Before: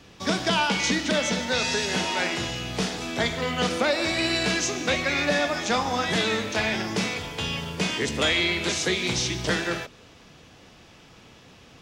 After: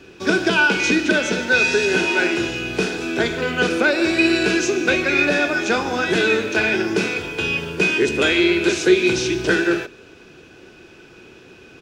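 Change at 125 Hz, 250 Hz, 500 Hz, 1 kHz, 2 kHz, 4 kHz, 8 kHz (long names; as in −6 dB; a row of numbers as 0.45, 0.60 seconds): +1.5, +8.5, +8.5, +2.0, +8.5, +1.0, 0.0 decibels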